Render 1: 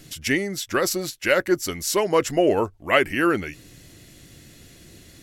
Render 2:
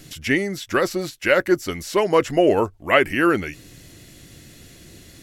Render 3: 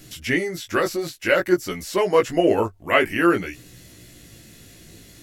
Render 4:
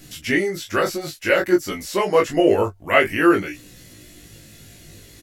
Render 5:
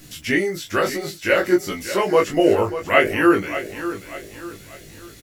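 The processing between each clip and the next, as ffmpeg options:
ffmpeg -i in.wav -filter_complex "[0:a]acrossover=split=3400[link_01][link_02];[link_02]acompressor=threshold=-37dB:ratio=4:attack=1:release=60[link_03];[link_01][link_03]amix=inputs=2:normalize=0,volume=2.5dB" out.wav
ffmpeg -i in.wav -af "highshelf=frequency=12000:gain=6,flanger=delay=16:depth=2.7:speed=0.53,volume=1.5dB" out.wav
ffmpeg -i in.wav -filter_complex "[0:a]asplit=2[link_01][link_02];[link_02]adelay=20,volume=-3.5dB[link_03];[link_01][link_03]amix=inputs=2:normalize=0" out.wav
ffmpeg -i in.wav -af "acrusher=bits=8:mix=0:aa=0.000001,aecho=1:1:589|1178|1767|2356:0.251|0.1|0.0402|0.0161" out.wav

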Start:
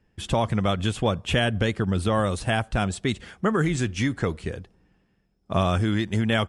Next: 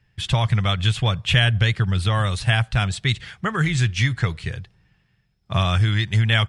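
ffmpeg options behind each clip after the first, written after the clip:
ffmpeg -i in.wav -af "equalizer=frequency=125:width_type=o:width=1:gain=12,equalizer=frequency=250:width_type=o:width=1:gain=-11,equalizer=frequency=500:width_type=o:width=1:gain=-5,equalizer=frequency=2000:width_type=o:width=1:gain=6,equalizer=frequency=4000:width_type=o:width=1:gain=8" out.wav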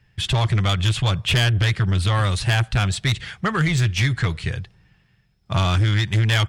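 ffmpeg -i in.wav -af "asoftclip=type=tanh:threshold=-18dB,volume=4dB" out.wav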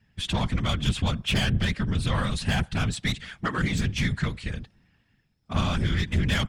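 ffmpeg -i in.wav -af "afftfilt=real='hypot(re,im)*cos(2*PI*random(0))':imag='hypot(re,im)*sin(2*PI*random(1))':win_size=512:overlap=0.75" out.wav

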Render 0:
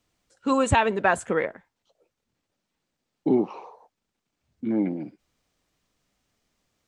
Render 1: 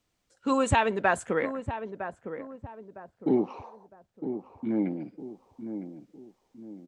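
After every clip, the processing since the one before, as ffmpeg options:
ffmpeg -i in.wav -filter_complex "[0:a]asplit=2[link_01][link_02];[link_02]adelay=958,lowpass=frequency=960:poles=1,volume=-8.5dB,asplit=2[link_03][link_04];[link_04]adelay=958,lowpass=frequency=960:poles=1,volume=0.41,asplit=2[link_05][link_06];[link_06]adelay=958,lowpass=frequency=960:poles=1,volume=0.41,asplit=2[link_07][link_08];[link_08]adelay=958,lowpass=frequency=960:poles=1,volume=0.41,asplit=2[link_09][link_10];[link_10]adelay=958,lowpass=frequency=960:poles=1,volume=0.41[link_11];[link_01][link_03][link_05][link_07][link_09][link_11]amix=inputs=6:normalize=0,volume=-3dB" out.wav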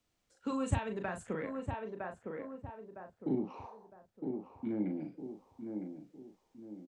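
ffmpeg -i in.wav -filter_complex "[0:a]acrossover=split=230[link_01][link_02];[link_02]acompressor=threshold=-33dB:ratio=6[link_03];[link_01][link_03]amix=inputs=2:normalize=0,asplit=2[link_04][link_05];[link_05]adelay=38,volume=-6dB[link_06];[link_04][link_06]amix=inputs=2:normalize=0,volume=-4.5dB" out.wav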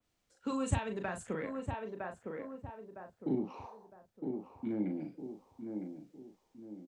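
ffmpeg -i in.wav -af "adynamicequalizer=threshold=0.00126:dfrequency=3000:dqfactor=0.7:tfrequency=3000:tqfactor=0.7:attack=5:release=100:ratio=0.375:range=2:mode=boostabove:tftype=highshelf" out.wav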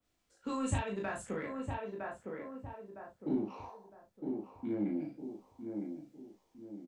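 ffmpeg -i in.wav -filter_complex "[0:a]asplit=2[link_01][link_02];[link_02]volume=32.5dB,asoftclip=hard,volume=-32.5dB,volume=-10.5dB[link_03];[link_01][link_03]amix=inputs=2:normalize=0,aecho=1:1:20|35:0.631|0.562,volume=-4dB" out.wav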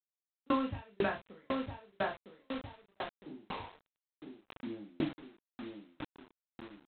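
ffmpeg -i in.wav -af "aresample=8000,acrusher=bits=7:mix=0:aa=0.000001,aresample=44100,aeval=exprs='val(0)*pow(10,-40*if(lt(mod(2*n/s,1),2*abs(2)/1000),1-mod(2*n/s,1)/(2*abs(2)/1000),(mod(2*n/s,1)-2*abs(2)/1000)/(1-2*abs(2)/1000))/20)':channel_layout=same,volume=10.5dB" out.wav

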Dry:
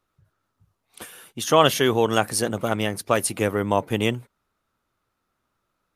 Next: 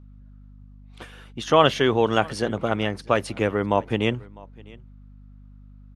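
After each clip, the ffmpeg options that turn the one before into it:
ffmpeg -i in.wav -af "lowpass=3900,aecho=1:1:653:0.0668,aeval=exprs='val(0)+0.00562*(sin(2*PI*50*n/s)+sin(2*PI*2*50*n/s)/2+sin(2*PI*3*50*n/s)/3+sin(2*PI*4*50*n/s)/4+sin(2*PI*5*50*n/s)/5)':channel_layout=same" out.wav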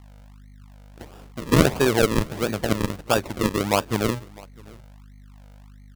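ffmpeg -i in.wav -af "acrusher=samples=41:mix=1:aa=0.000001:lfo=1:lforange=41:lforate=1.5" out.wav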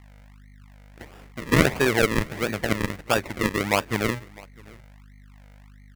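ffmpeg -i in.wav -af "equalizer=frequency=2000:width=2.3:gain=10,volume=-2.5dB" out.wav

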